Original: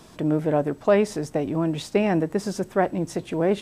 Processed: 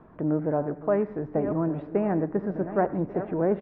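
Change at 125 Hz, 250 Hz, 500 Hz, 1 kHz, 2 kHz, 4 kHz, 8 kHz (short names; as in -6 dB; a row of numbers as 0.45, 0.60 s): -3.0 dB, -3.0 dB, -3.5 dB, -3.0 dB, -8.5 dB, under -25 dB, under -40 dB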